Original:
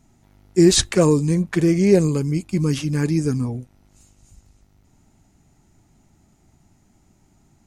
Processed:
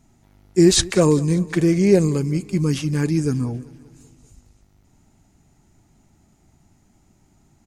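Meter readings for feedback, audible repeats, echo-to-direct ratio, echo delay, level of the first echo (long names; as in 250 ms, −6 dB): 59%, 4, −19.0 dB, 194 ms, −21.0 dB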